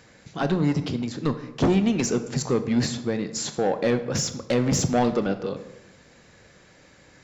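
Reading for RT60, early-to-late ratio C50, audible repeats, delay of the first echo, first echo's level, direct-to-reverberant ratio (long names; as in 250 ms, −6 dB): 0.95 s, 12.0 dB, no echo audible, no echo audible, no echo audible, 9.0 dB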